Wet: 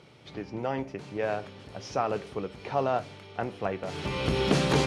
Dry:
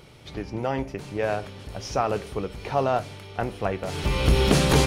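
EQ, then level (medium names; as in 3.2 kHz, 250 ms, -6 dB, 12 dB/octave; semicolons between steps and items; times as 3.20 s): high-pass 120 Hz 12 dB/octave; distance through air 61 m; -3.5 dB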